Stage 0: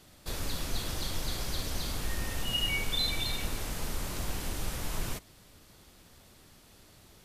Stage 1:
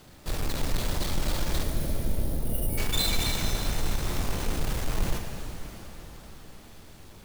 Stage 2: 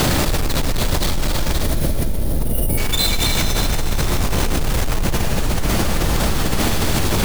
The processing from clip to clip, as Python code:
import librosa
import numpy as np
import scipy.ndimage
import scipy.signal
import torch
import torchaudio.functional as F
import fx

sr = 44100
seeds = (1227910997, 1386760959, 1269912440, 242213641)

y1 = fx.halfwave_hold(x, sr)
y1 = fx.spec_box(y1, sr, start_s=1.63, length_s=1.15, low_hz=710.0, high_hz=8700.0, gain_db=-25)
y1 = fx.rev_shimmer(y1, sr, seeds[0], rt60_s=3.8, semitones=7, shimmer_db=-8, drr_db=4.0)
y2 = fx.env_flatten(y1, sr, amount_pct=100)
y2 = y2 * librosa.db_to_amplitude(3.5)